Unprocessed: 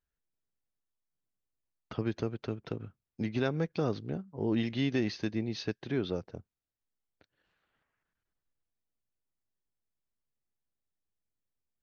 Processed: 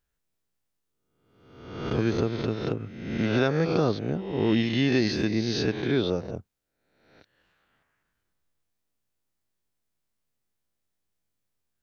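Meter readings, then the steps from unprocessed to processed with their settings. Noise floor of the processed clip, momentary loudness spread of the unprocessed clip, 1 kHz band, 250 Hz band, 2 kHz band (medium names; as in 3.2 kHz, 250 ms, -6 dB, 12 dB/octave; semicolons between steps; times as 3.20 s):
-80 dBFS, 11 LU, +9.0 dB, +7.5 dB, +9.5 dB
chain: reverse spectral sustain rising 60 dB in 0.97 s; trim +5.5 dB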